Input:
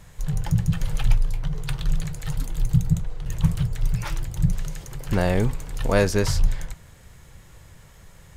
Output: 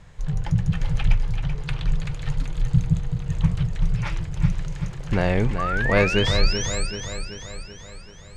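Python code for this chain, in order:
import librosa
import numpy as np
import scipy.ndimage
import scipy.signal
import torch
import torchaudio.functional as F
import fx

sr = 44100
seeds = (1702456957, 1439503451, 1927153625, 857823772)

p1 = fx.dynamic_eq(x, sr, hz=2300.0, q=2.1, threshold_db=-47.0, ratio=4.0, max_db=6)
p2 = fx.spec_paint(p1, sr, seeds[0], shape='rise', start_s=5.58, length_s=1.29, low_hz=1100.0, high_hz=8900.0, level_db=-26.0)
p3 = fx.air_absorb(p2, sr, metres=94.0)
y = p3 + fx.echo_feedback(p3, sr, ms=383, feedback_pct=56, wet_db=-8, dry=0)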